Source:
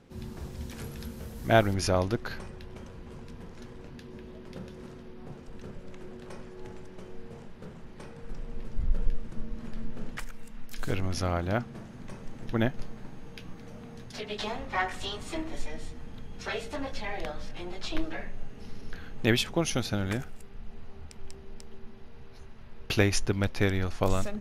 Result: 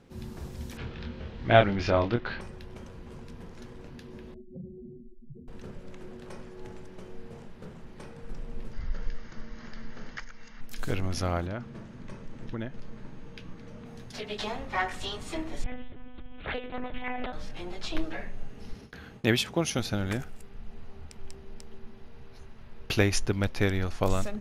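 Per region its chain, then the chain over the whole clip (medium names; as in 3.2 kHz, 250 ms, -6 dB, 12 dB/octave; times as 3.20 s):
0.77–2.41 s: low-pass 3.5 kHz 24 dB/octave + treble shelf 2.4 kHz +7.5 dB + doubling 25 ms -5 dB
4.34–5.48 s: spectral contrast enhancement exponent 3.9 + doubling 40 ms -10 dB + loudspeaker Doppler distortion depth 0.11 ms
8.73–10.61 s: rippled Chebyshev low-pass 6.7 kHz, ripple 6 dB + band-stop 2.5 kHz, Q 9.1 + tape noise reduction on one side only encoder only
11.46–13.86 s: band-stop 750 Hz, Q 6.9 + compression 4:1, threshold -31 dBFS + distance through air 57 m
15.64–17.33 s: monotone LPC vocoder at 8 kHz 250 Hz + loudspeaker Doppler distortion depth 0.37 ms
18.73–19.79 s: high-pass 67 Hz + gate with hold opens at -37 dBFS, closes at -40 dBFS
whole clip: none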